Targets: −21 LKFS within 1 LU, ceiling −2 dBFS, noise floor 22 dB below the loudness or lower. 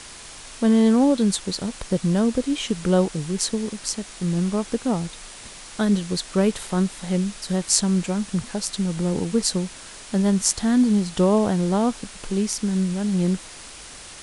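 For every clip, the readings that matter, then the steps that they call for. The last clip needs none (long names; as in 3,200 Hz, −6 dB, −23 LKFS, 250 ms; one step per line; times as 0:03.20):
background noise floor −41 dBFS; target noise floor −45 dBFS; integrated loudness −22.5 LKFS; sample peak −1.0 dBFS; target loudness −21.0 LKFS
→ broadband denoise 6 dB, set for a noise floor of −41 dBFS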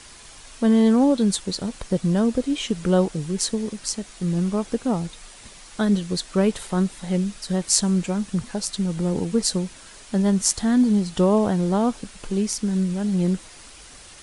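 background noise floor −45 dBFS; integrated loudness −22.5 LKFS; sample peak −1.0 dBFS; target loudness −21.0 LKFS
→ level +1.5 dB
brickwall limiter −2 dBFS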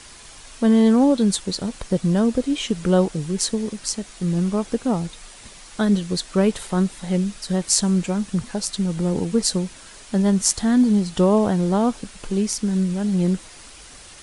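integrated loudness −21.0 LKFS; sample peak −2.0 dBFS; background noise floor −44 dBFS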